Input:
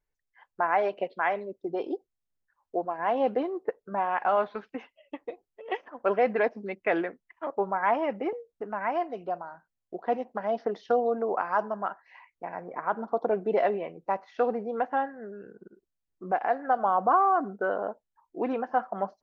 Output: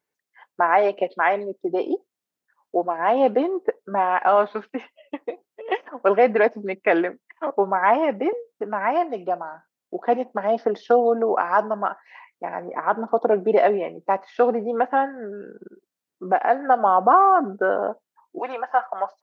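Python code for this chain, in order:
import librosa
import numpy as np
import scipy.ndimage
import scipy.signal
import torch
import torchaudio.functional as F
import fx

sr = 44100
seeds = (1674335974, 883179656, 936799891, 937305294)

y = fx.cheby1_highpass(x, sr, hz=fx.steps((0.0, 230.0), (18.38, 840.0)), order=2)
y = F.gain(torch.from_numpy(y), 8.0).numpy()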